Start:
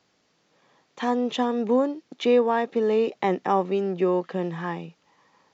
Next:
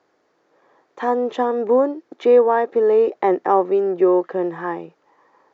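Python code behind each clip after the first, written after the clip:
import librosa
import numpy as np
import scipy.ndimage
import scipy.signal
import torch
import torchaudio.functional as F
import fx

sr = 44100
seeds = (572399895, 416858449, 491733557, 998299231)

y = fx.curve_eq(x, sr, hz=(210.0, 340.0, 1700.0, 2800.0), db=(0, 14, 10, -1))
y = y * 10.0 ** (-6.0 / 20.0)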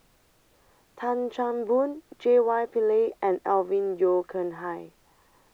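y = fx.dmg_noise_colour(x, sr, seeds[0], colour='pink', level_db=-56.0)
y = y * 10.0 ** (-7.5 / 20.0)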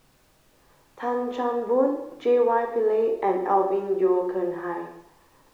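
y = fx.rev_plate(x, sr, seeds[1], rt60_s=0.8, hf_ratio=0.85, predelay_ms=0, drr_db=1.5)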